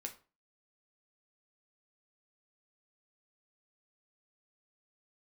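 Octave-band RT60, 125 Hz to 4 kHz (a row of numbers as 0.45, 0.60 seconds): 0.40, 0.35, 0.35, 0.35, 0.30, 0.25 seconds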